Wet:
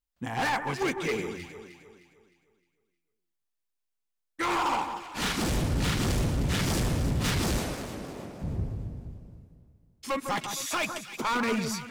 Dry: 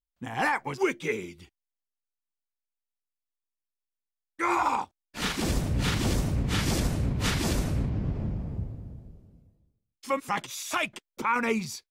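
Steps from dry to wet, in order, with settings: 7.58–8.42 HPF 410 Hz 12 dB/oct; hard clip -27.5 dBFS, distortion -8 dB; on a send: echo with dull and thin repeats by turns 0.154 s, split 1700 Hz, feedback 62%, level -7 dB; on the sum: gain +2.5 dB

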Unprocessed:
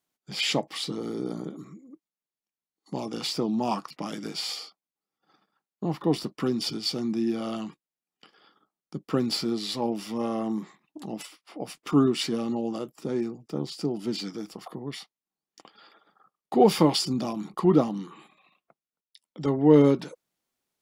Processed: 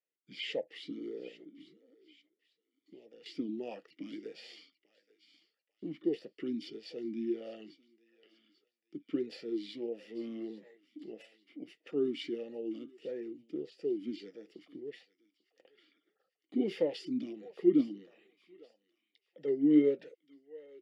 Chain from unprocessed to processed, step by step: 1.28–3.26 compressor 4:1, threshold -43 dBFS, peak gain reduction 13.5 dB; on a send: thinning echo 0.844 s, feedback 36%, high-pass 1200 Hz, level -16 dB; on the sum: vowel sweep e-i 1.6 Hz

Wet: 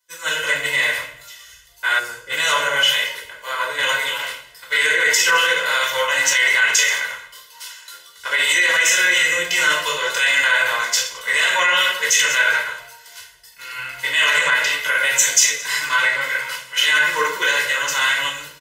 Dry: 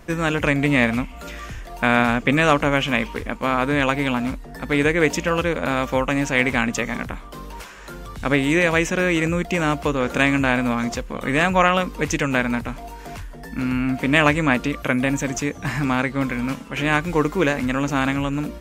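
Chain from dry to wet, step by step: regenerating reverse delay 0.11 s, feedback 53%, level -14 dB; differentiator; notch 2400 Hz, Q 5.4; comb 2 ms, depth 95%; reverb RT60 0.85 s, pre-delay 4 ms, DRR -4 dB; 1.99–2.3 spectral gain 570–4200 Hz -13 dB; bell 2200 Hz +7 dB 2.6 oct, from 4.19 s +13 dB; limiter -12 dBFS, peak gain reduction 11.5 dB; three-band expander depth 100%; gain +4.5 dB

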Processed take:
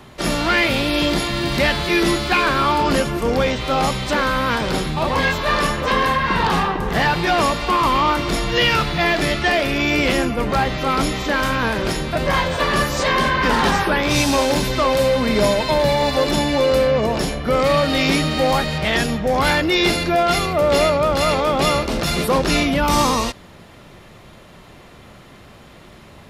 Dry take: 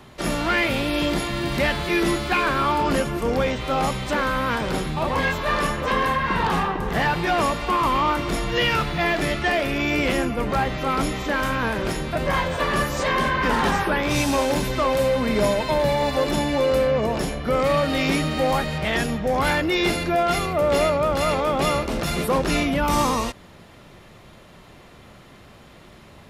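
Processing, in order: dynamic EQ 4500 Hz, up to +5 dB, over -42 dBFS, Q 1.3; gain +3.5 dB

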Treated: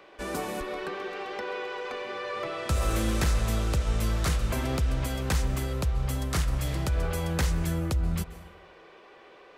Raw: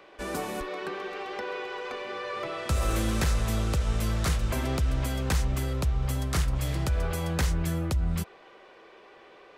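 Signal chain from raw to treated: plate-style reverb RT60 0.99 s, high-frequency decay 0.55×, pre-delay 0.12 s, DRR 14 dB

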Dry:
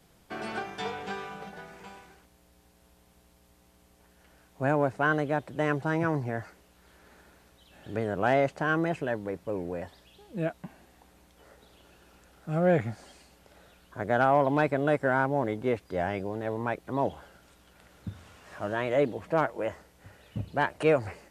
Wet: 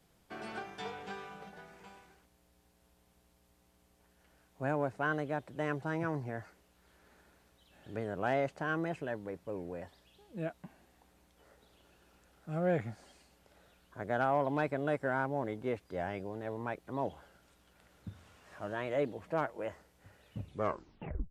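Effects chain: tape stop at the end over 0.91 s; gain -7.5 dB

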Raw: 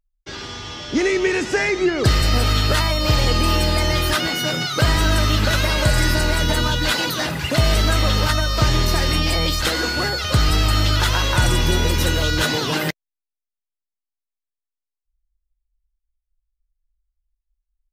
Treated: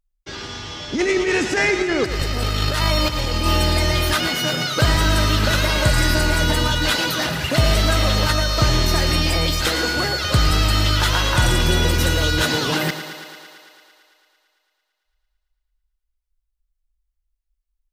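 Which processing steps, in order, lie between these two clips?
0.95–3.46 negative-ratio compressor -19 dBFS, ratio -0.5; thinning echo 0.112 s, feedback 75%, high-pass 170 Hz, level -11 dB

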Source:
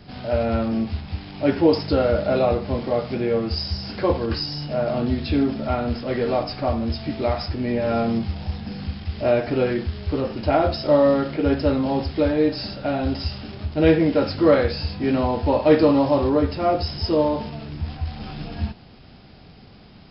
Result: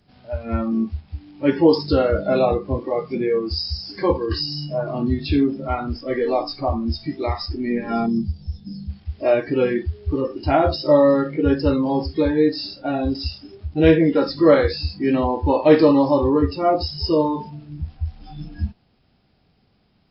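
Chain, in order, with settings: spectral noise reduction 18 dB; 8.06–8.9 band shelf 1300 Hz -11 dB 2.6 oct; gain +2.5 dB

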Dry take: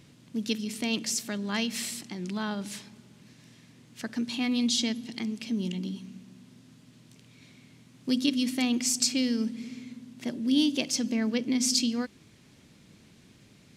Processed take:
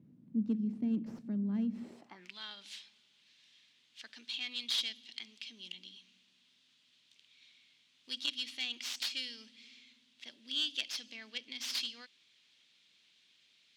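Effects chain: tracing distortion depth 0.18 ms; band-pass sweep 210 Hz -> 3400 Hz, 1.8–2.35

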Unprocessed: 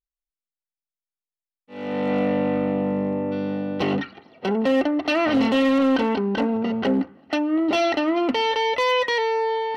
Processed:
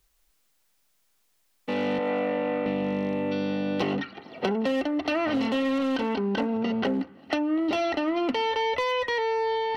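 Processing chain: 1.98–2.66 three-band isolator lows -17 dB, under 280 Hz, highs -14 dB, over 2400 Hz; three-band squash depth 100%; gain -5.5 dB

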